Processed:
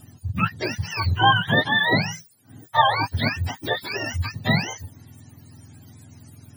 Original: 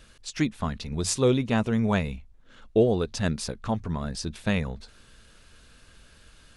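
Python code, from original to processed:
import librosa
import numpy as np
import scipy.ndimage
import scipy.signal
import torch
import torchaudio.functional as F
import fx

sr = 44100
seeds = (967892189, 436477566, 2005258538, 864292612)

y = fx.octave_mirror(x, sr, pivot_hz=630.0)
y = y * librosa.db_to_amplitude(6.5)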